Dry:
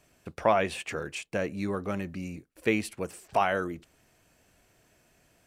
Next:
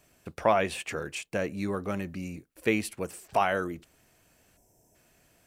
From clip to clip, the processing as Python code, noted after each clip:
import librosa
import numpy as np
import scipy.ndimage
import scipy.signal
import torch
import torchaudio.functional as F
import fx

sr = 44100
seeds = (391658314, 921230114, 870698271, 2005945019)

y = fx.spec_box(x, sr, start_s=4.57, length_s=0.38, low_hz=1000.0, high_hz=5000.0, gain_db=-17)
y = fx.high_shelf(y, sr, hz=11000.0, db=7.5)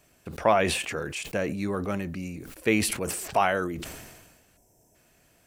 y = fx.sustainer(x, sr, db_per_s=41.0)
y = y * 10.0 ** (1.5 / 20.0)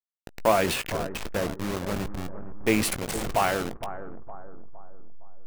y = fx.delta_hold(x, sr, step_db=-24.5)
y = fx.doubler(y, sr, ms=18.0, db=-13.5)
y = fx.echo_bbd(y, sr, ms=462, stages=4096, feedback_pct=43, wet_db=-12)